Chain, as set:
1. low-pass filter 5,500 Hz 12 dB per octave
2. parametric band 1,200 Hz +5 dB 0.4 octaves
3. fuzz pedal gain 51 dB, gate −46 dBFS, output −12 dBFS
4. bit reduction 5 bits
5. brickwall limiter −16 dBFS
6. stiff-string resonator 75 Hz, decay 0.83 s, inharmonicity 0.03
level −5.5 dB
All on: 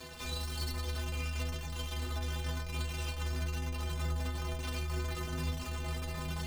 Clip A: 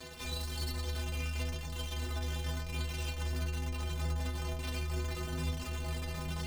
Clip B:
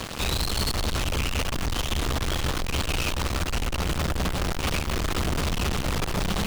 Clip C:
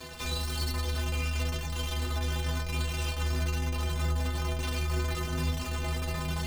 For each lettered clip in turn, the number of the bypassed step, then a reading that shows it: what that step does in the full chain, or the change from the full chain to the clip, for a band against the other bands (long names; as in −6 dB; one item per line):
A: 2, 1 kHz band −1.5 dB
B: 6, 125 Hz band −5.5 dB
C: 5, average gain reduction 5.5 dB